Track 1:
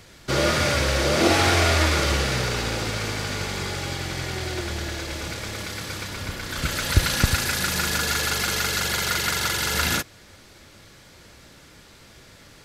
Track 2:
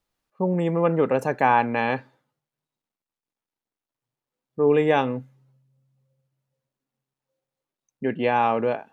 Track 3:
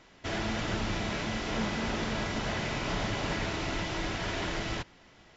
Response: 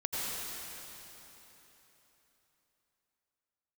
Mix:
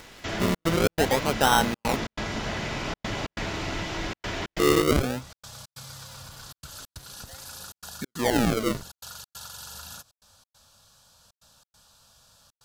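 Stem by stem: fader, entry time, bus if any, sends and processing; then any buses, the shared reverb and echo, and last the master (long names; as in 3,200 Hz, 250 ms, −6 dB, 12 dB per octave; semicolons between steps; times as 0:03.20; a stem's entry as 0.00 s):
−13.0 dB, 0.00 s, no send, phaser with its sweep stopped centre 860 Hz, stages 4; downward compressor, threshold −30 dBFS, peak gain reduction 17.5 dB
−2.0 dB, 0.00 s, no send, sample-and-hold swept by an LFO 37×, swing 100% 0.48 Hz; upward compression, threshold −30 dBFS
+1.5 dB, 0.00 s, no send, no processing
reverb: not used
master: gate pattern "xxxxx.xx.xx" 138 BPM −60 dB; one half of a high-frequency compander encoder only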